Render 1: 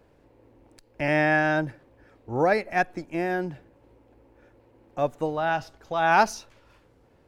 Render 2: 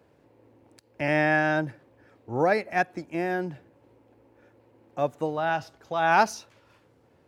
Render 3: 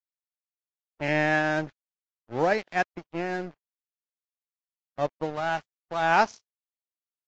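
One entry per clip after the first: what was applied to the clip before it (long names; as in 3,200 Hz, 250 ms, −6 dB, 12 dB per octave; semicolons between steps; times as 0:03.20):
high-pass filter 79 Hz 24 dB per octave; level −1 dB
low-pass that shuts in the quiet parts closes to 470 Hz, open at −21.5 dBFS; dead-zone distortion −36.5 dBFS; Ogg Vorbis 48 kbit/s 16,000 Hz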